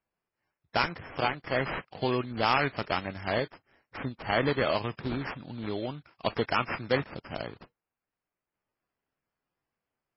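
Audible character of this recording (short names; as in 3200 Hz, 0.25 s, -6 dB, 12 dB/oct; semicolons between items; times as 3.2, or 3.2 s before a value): aliases and images of a low sample rate 3800 Hz, jitter 20%; MP3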